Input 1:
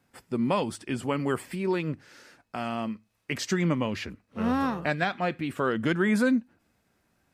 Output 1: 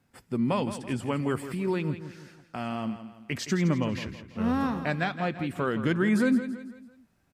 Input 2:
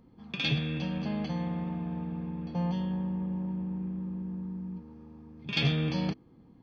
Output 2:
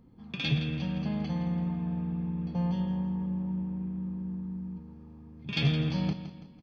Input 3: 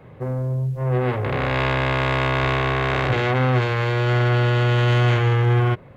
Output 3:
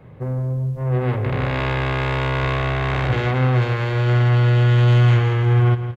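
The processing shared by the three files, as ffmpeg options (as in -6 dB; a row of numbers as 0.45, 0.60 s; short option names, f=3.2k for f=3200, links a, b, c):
-af "bass=f=250:g=5,treble=f=4k:g=0,aecho=1:1:166|332|498|664:0.266|0.112|0.0469|0.0197,volume=-2.5dB"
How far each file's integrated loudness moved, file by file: -0.5, +0.5, +1.5 LU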